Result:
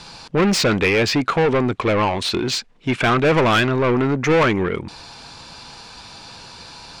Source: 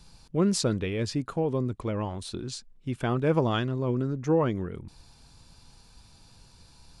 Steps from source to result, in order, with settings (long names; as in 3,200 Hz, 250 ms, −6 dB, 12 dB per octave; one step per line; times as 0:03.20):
Bessel low-pass filter 6,100 Hz, order 2
mid-hump overdrive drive 27 dB, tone 3,900 Hz, clips at −12 dBFS
dynamic equaliser 2,300 Hz, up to +7 dB, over −44 dBFS, Q 2.2
level +3 dB